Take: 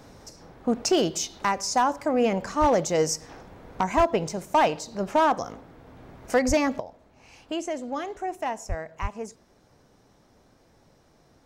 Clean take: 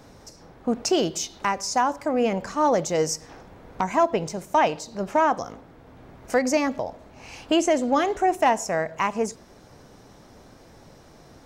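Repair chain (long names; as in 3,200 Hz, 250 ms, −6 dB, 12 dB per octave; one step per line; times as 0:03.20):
clipped peaks rebuilt −14 dBFS
high-pass at the plosives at 0:02.60/0:03.96/0:06.47/0:08.68/0:09.01
level 0 dB, from 0:06.80 +10 dB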